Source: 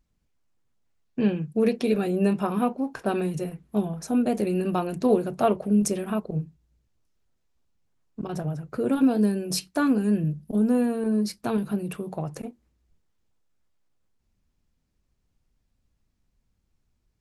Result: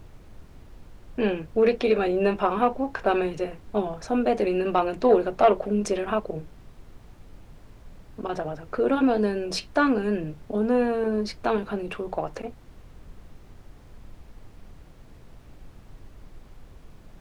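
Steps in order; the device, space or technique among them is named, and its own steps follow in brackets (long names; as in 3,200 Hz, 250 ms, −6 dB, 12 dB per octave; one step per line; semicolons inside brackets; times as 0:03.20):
aircraft cabin announcement (band-pass filter 410–3,500 Hz; soft clipping −14.5 dBFS, distortion −22 dB; brown noise bed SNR 17 dB)
level +7 dB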